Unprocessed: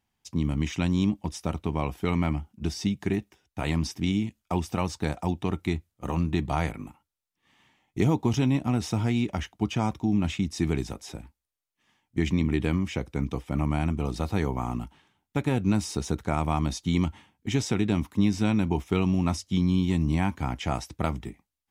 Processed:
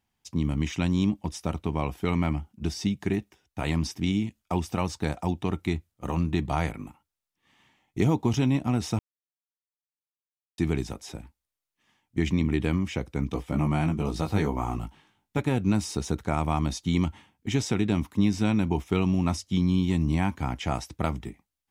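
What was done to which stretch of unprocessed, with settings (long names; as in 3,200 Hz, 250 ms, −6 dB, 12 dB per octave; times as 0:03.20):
0:08.99–0:10.58: silence
0:13.31–0:15.40: double-tracking delay 19 ms −4 dB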